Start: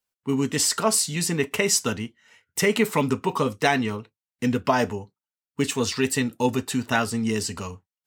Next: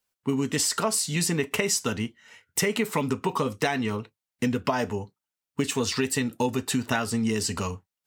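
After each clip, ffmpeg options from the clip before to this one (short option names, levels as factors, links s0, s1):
-af "acompressor=threshold=0.0501:ratio=6,volume=1.58"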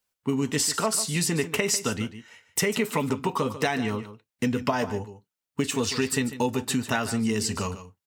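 -af "aecho=1:1:146:0.224"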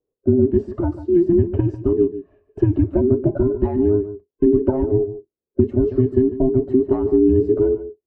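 -af "afftfilt=real='real(if(between(b,1,1008),(2*floor((b-1)/24)+1)*24-b,b),0)':imag='imag(if(between(b,1,1008),(2*floor((b-1)/24)+1)*24-b,b),0)*if(between(b,1,1008),-1,1)':win_size=2048:overlap=0.75,lowpass=f=420:t=q:w=4.9,equalizer=f=93:t=o:w=0.94:g=6,volume=1.58"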